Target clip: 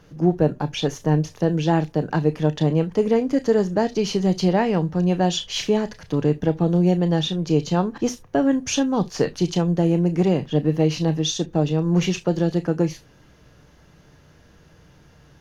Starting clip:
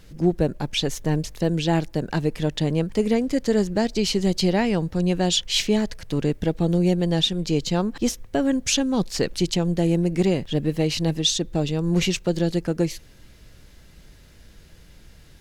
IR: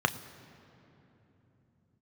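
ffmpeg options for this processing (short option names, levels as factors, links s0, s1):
-filter_complex "[0:a]asplit=2[s0][s1];[1:a]atrim=start_sample=2205,atrim=end_sample=3528[s2];[s1][s2]afir=irnorm=-1:irlink=0,volume=0.668[s3];[s0][s3]amix=inputs=2:normalize=0,volume=0.473"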